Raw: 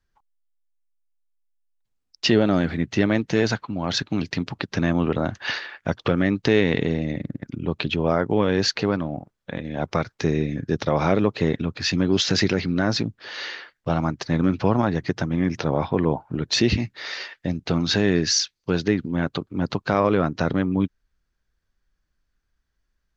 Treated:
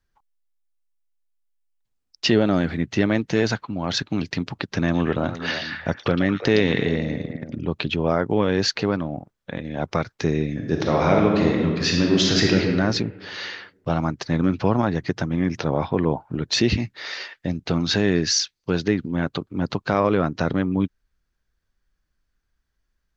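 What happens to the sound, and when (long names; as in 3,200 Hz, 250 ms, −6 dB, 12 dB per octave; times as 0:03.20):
0:04.77–0:07.64: echo through a band-pass that steps 113 ms, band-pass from 4,200 Hz, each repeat −1.4 octaves, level −2 dB
0:10.52–0:12.61: thrown reverb, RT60 1.6 s, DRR 0 dB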